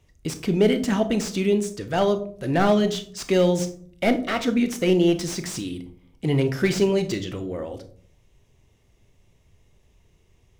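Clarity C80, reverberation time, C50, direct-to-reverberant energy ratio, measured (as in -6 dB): 17.0 dB, 0.50 s, 13.5 dB, 8.5 dB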